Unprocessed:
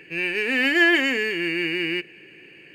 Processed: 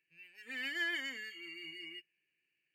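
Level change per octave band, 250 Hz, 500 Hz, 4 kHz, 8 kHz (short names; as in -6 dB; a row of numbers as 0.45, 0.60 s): -27.5, -29.0, -16.0, -14.0 dB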